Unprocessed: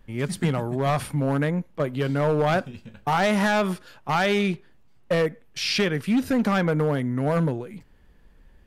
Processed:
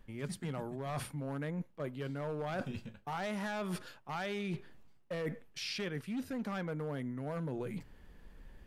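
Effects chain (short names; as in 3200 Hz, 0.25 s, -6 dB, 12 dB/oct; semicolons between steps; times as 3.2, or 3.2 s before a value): notches 60/120 Hz; reverse; compressor 10:1, threshold -36 dBFS, peak gain reduction 17.5 dB; reverse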